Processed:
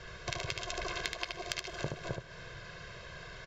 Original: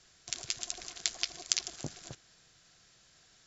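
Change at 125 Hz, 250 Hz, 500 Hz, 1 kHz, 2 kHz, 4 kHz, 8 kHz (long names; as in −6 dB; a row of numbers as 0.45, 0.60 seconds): +8.5 dB, +5.0 dB, +11.5 dB, +10.5 dB, +7.0 dB, −3.5 dB, can't be measured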